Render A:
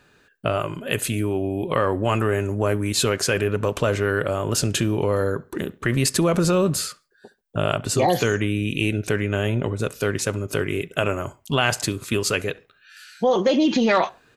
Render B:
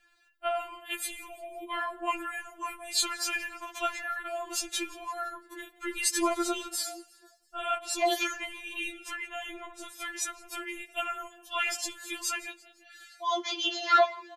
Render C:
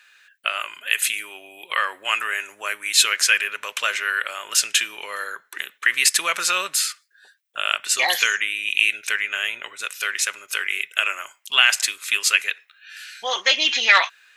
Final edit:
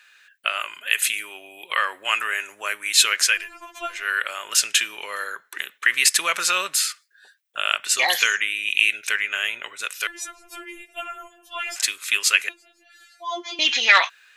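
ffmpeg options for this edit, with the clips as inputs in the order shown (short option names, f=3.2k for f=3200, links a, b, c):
-filter_complex "[1:a]asplit=3[a][b][c];[2:a]asplit=4[d][e][f][g];[d]atrim=end=3.49[h];[a]atrim=start=3.25:end=4.12[i];[e]atrim=start=3.88:end=10.072[j];[b]atrim=start=10.068:end=11.762[k];[f]atrim=start=11.758:end=12.492[l];[c]atrim=start=12.488:end=13.592[m];[g]atrim=start=13.588[n];[h][i]acrossfade=d=0.24:c1=tri:c2=tri[o];[o][j]acrossfade=d=0.24:c1=tri:c2=tri[p];[p][k]acrossfade=d=0.004:c1=hsin:c2=hsin[q];[q][l]acrossfade=d=0.004:c1=hsin:c2=hsin[r];[r][m]acrossfade=d=0.004:c1=hsin:c2=hsin[s];[s][n]acrossfade=d=0.004:c1=hsin:c2=hsin"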